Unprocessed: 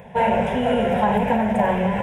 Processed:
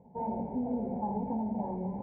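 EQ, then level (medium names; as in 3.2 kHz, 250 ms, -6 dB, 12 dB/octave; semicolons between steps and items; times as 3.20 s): cascade formant filter u; -2.0 dB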